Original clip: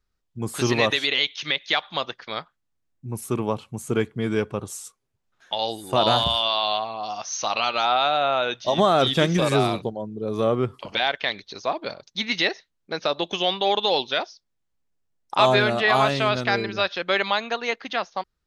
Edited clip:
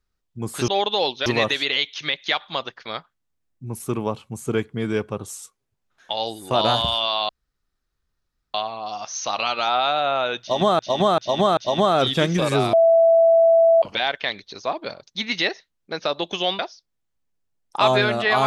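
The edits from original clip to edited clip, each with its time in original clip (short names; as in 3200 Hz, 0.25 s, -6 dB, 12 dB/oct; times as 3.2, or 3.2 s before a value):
6.71 insert room tone 1.25 s
8.57–8.96 loop, 4 plays
9.73–10.82 bleep 662 Hz -11 dBFS
13.59–14.17 move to 0.68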